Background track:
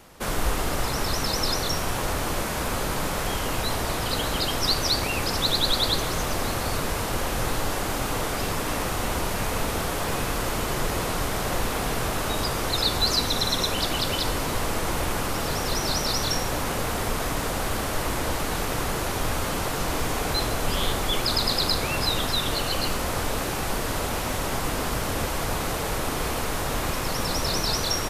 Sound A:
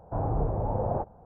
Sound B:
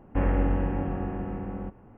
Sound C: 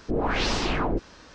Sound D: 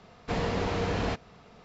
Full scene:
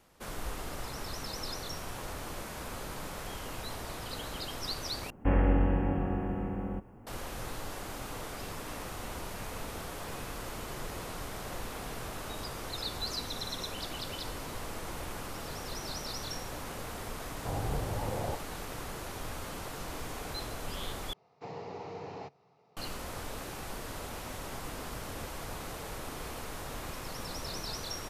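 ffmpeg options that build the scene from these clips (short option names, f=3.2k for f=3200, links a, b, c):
-filter_complex "[0:a]volume=-13.5dB[a];[2:a]bass=f=250:g=0,treble=f=4k:g=12[b];[1:a]bandreject=f=650:w=16[c];[4:a]highpass=f=110:w=0.5412,highpass=f=110:w=1.3066,equalizer=f=140:t=q:w=4:g=4,equalizer=f=220:t=q:w=4:g=-9,equalizer=f=410:t=q:w=4:g=6,equalizer=f=830:t=q:w=4:g=9,equalizer=f=1.6k:t=q:w=4:g=-8,equalizer=f=3.3k:t=q:w=4:g=-8,lowpass=f=6.4k:w=0.5412,lowpass=f=6.4k:w=1.3066[d];[a]asplit=3[e][f][g];[e]atrim=end=5.104[h];[b]atrim=end=1.97,asetpts=PTS-STARTPTS,volume=-1dB[i];[f]atrim=start=7.066:end=21.134[j];[d]atrim=end=1.64,asetpts=PTS-STARTPTS,volume=-14.5dB[k];[g]atrim=start=22.766[l];[c]atrim=end=1.25,asetpts=PTS-STARTPTS,volume=-6.5dB,afade=t=in:d=0.004:c=hsin,afade=t=out:st=1.246:d=0.004:c=hsin,adelay=17330[m];[h][i]acrossfade=d=0.004:c1=hsin:c2=hsin[n];[n][j]acrossfade=d=0.004:c1=hsin:c2=hsin[o];[o][k]acrossfade=d=0.004:c1=hsin:c2=hsin[p];[p][l]acrossfade=d=0.004:c1=hsin:c2=hsin[q];[q][m]amix=inputs=2:normalize=0"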